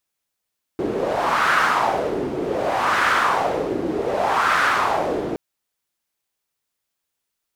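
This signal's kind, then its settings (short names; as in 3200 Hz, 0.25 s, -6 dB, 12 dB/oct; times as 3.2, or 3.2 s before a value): wind-like swept noise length 4.57 s, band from 350 Hz, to 1400 Hz, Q 3, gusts 3, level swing 6.5 dB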